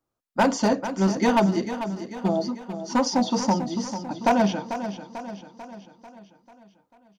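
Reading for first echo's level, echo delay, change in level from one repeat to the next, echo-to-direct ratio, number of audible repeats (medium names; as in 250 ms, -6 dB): -10.5 dB, 443 ms, -5.5 dB, -9.0 dB, 5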